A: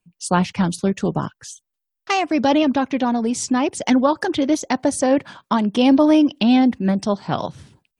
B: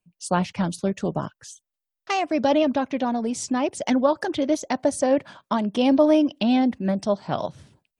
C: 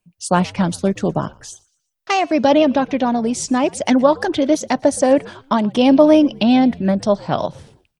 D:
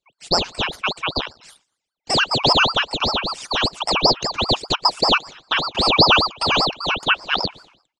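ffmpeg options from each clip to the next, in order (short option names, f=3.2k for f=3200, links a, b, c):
-af "equalizer=f=610:t=o:w=0.39:g=6.5,volume=-5.5dB"
-filter_complex "[0:a]asplit=4[a][b][c][d];[b]adelay=119,afreqshift=-84,volume=-24dB[e];[c]adelay=238,afreqshift=-168,volume=-32dB[f];[d]adelay=357,afreqshift=-252,volume=-39.9dB[g];[a][e][f][g]amix=inputs=4:normalize=0,volume=6.5dB"
-af "afftfilt=real='real(if(lt(b,272),68*(eq(floor(b/68),0)*2+eq(floor(b/68),1)*0+eq(floor(b/68),2)*3+eq(floor(b/68),3)*1)+mod(b,68),b),0)':imag='imag(if(lt(b,272),68*(eq(floor(b/68),0)*2+eq(floor(b/68),1)*0+eq(floor(b/68),2)*3+eq(floor(b/68),3)*1)+mod(b,68),b),0)':win_size=2048:overlap=0.75,highpass=f=210:w=0.5412,highpass=f=210:w=1.3066,equalizer=f=460:t=q:w=4:g=-3,equalizer=f=2.2k:t=q:w=4:g=10,equalizer=f=4.5k:t=q:w=4:g=3,lowpass=f=7.1k:w=0.5412,lowpass=f=7.1k:w=1.3066,aeval=exprs='val(0)*sin(2*PI*1800*n/s+1800*0.7/5.1*sin(2*PI*5.1*n/s))':c=same,volume=-6.5dB"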